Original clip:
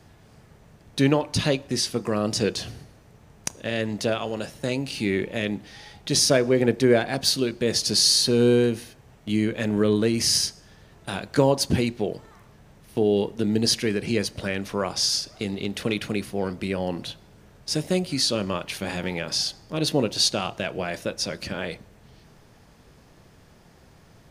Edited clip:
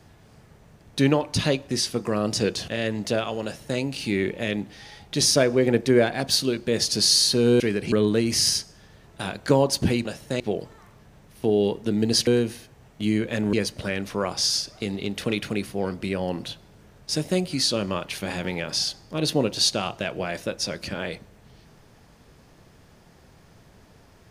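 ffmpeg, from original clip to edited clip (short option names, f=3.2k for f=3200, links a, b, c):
-filter_complex "[0:a]asplit=8[a][b][c][d][e][f][g][h];[a]atrim=end=2.682[i];[b]atrim=start=3.618:end=8.542[j];[c]atrim=start=13.798:end=14.122[k];[d]atrim=start=9.798:end=11.932[l];[e]atrim=start=4.378:end=4.732[m];[f]atrim=start=11.928:end=13.802[n];[g]atrim=start=8.538:end=9.802[o];[h]atrim=start=14.118[p];[i][j]acrossfade=d=0.004:c1=hsin:c2=hsin[q];[q][k]acrossfade=d=0.004:c1=hsin:c2=hsin[r];[r][l]acrossfade=d=0.004:c1=hsin:c2=hsin[s];[s][m]acrossfade=d=0.004:c1=hsin:c2=hsin[t];[t][n]acrossfade=d=0.004:c1=hsin:c2=hsin[u];[u][o]acrossfade=d=0.004:c1=hsin:c2=hsin[v];[v][p]acrossfade=d=0.004:c1=hsin:c2=hsin"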